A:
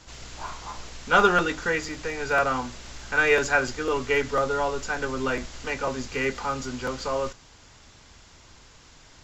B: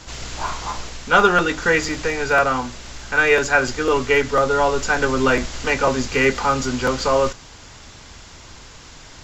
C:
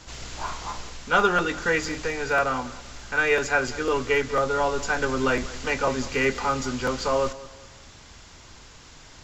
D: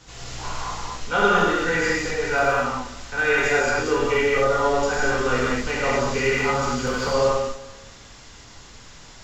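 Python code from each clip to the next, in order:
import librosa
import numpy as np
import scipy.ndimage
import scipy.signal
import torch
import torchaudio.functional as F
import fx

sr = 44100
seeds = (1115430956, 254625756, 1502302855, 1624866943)

y1 = fx.rider(x, sr, range_db=3, speed_s=0.5)
y1 = y1 * 10.0 ** (7.0 / 20.0)
y2 = fx.echo_feedback(y1, sr, ms=194, feedback_pct=36, wet_db=-18)
y2 = y2 * 10.0 ** (-6.0 / 20.0)
y3 = fx.rev_gated(y2, sr, seeds[0], gate_ms=270, shape='flat', drr_db=-6.5)
y3 = y3 * 10.0 ** (-4.5 / 20.0)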